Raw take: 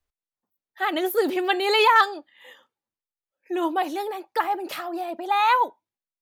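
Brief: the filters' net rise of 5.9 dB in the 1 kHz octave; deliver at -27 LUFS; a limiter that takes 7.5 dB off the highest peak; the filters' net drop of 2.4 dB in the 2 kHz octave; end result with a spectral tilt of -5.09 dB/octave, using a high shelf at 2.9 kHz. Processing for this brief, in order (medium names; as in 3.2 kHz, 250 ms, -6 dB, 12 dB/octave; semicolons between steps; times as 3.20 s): peaking EQ 1 kHz +8 dB; peaking EQ 2 kHz -8 dB; treble shelf 2.9 kHz +6 dB; trim -5.5 dB; peak limiter -15 dBFS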